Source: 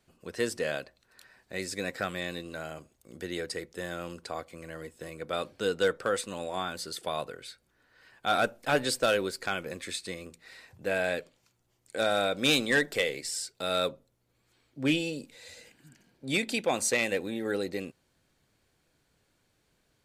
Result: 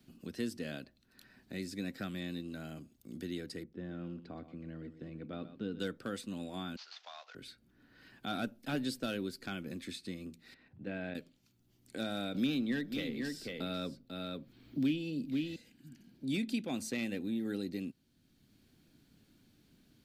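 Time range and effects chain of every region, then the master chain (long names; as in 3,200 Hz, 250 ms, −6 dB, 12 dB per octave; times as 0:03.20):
0:03.63–0:05.80: head-to-tape spacing loss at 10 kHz 39 dB + single-tap delay 122 ms −13.5 dB
0:06.76–0:07.35: variable-slope delta modulation 32 kbit/s + Butterworth high-pass 700 Hz + downward compressor 2 to 1, threshold −40 dBFS
0:10.54–0:11.15: low-pass filter 2,300 Hz + output level in coarse steps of 10 dB
0:12.34–0:15.56: parametric band 8,500 Hz −10 dB 1.3 octaves + single-tap delay 494 ms −9.5 dB + multiband upward and downward compressor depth 70%
whole clip: octave-band graphic EQ 250/500/1,000/2,000/8,000 Hz +10/−10/−9/−6/−9 dB; multiband upward and downward compressor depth 40%; level −5 dB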